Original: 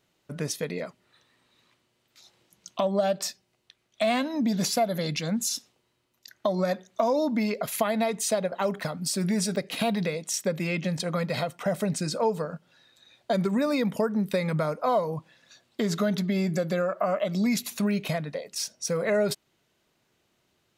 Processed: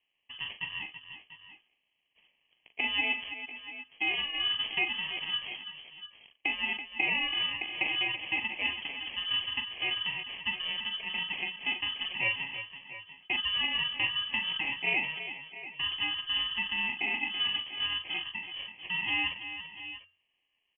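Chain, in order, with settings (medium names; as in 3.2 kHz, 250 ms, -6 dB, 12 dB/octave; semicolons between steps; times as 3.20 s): high-pass 170 Hz 24 dB/octave; treble shelf 2.3 kHz -10.5 dB; hum notches 60/120/180/240/300/360/420 Hz; sample-and-hold 25×; multi-tap echo 41/331/691/710 ms -9/-10.5/-15/-18.5 dB; frequency inversion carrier 3.2 kHz; trim -5 dB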